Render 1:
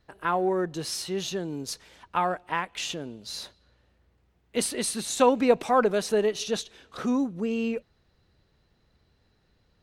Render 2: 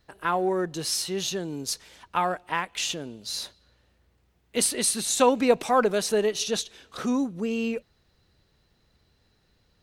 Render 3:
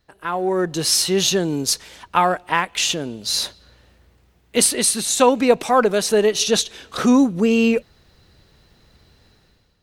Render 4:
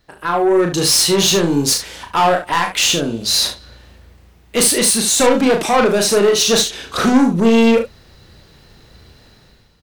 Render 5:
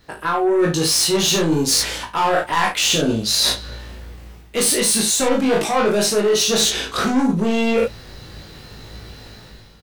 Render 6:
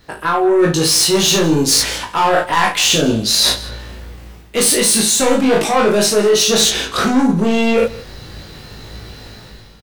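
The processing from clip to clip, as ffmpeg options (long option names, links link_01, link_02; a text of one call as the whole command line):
ffmpeg -i in.wav -af "highshelf=frequency=3500:gain=7" out.wav
ffmpeg -i in.wav -af "dynaudnorm=framelen=150:gausssize=7:maxgain=13dB,volume=-1dB" out.wav
ffmpeg -i in.wav -af "asoftclip=type=tanh:threshold=-17.5dB,aecho=1:1:35|72:0.562|0.316,volume=7dB" out.wav
ffmpeg -i in.wav -filter_complex "[0:a]asplit=2[link_01][link_02];[link_02]adelay=19,volume=-2.5dB[link_03];[link_01][link_03]amix=inputs=2:normalize=0,areverse,acompressor=threshold=-21dB:ratio=6,areverse,volume=5.5dB" out.wav
ffmpeg -i in.wav -af "aecho=1:1:161:0.106,volume=4dB" out.wav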